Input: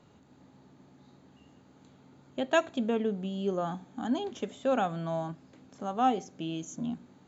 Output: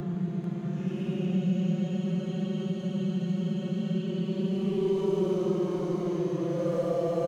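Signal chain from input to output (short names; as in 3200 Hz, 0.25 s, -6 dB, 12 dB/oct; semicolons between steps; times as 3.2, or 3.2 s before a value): Doppler pass-by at 1.94, 15 m/s, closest 5 m; comb 5.6 ms, depth 54%; sample leveller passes 3; Paulstretch 16×, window 0.05 s, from 3.14; split-band echo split 440 Hz, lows 0.137 s, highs 0.442 s, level -5.5 dB; three-band squash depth 40%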